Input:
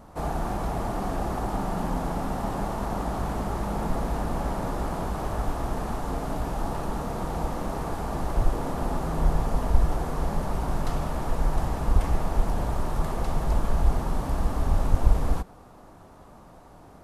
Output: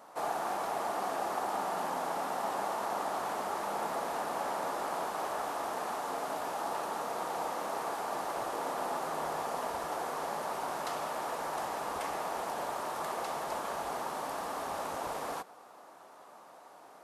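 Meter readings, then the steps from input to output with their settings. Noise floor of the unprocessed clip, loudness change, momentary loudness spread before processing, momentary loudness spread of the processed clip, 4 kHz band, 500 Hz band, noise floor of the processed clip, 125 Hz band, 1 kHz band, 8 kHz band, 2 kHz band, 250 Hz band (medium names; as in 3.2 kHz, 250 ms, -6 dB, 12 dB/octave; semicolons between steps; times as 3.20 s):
-49 dBFS, -6.0 dB, 5 LU, 3 LU, 0.0 dB, -3.5 dB, -54 dBFS, -27.0 dB, -1.0 dB, 0.0 dB, 0.0 dB, -14.0 dB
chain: high-pass 560 Hz 12 dB/octave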